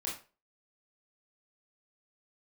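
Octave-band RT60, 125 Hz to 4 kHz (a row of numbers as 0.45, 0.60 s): 0.35, 0.30, 0.35, 0.30, 0.30, 0.30 s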